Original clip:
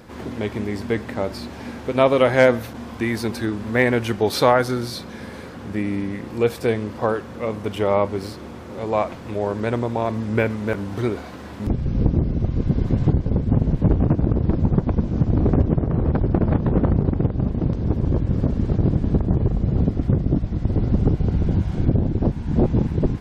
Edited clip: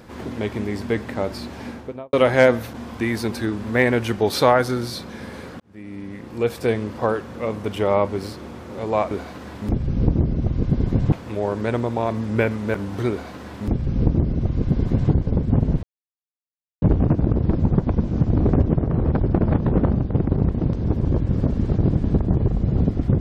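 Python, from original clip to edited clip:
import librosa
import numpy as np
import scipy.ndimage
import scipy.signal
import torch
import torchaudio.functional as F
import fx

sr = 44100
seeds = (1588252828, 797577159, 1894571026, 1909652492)

y = fx.studio_fade_out(x, sr, start_s=1.63, length_s=0.5)
y = fx.edit(y, sr, fx.fade_in_span(start_s=5.6, length_s=1.1),
    fx.duplicate(start_s=11.09, length_s=2.01, to_s=9.11),
    fx.insert_silence(at_s=13.82, length_s=0.99),
    fx.reverse_span(start_s=16.92, length_s=0.57), tone=tone)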